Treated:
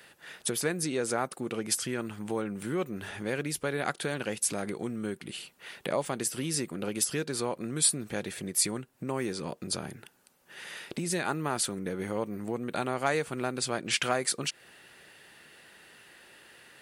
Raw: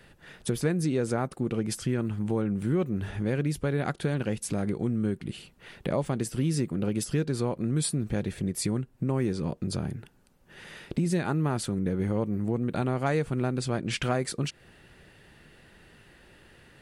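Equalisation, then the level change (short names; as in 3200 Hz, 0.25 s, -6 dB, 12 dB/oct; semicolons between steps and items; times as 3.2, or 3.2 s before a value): HPF 730 Hz 6 dB/oct; high shelf 7300 Hz +6.5 dB; +3.5 dB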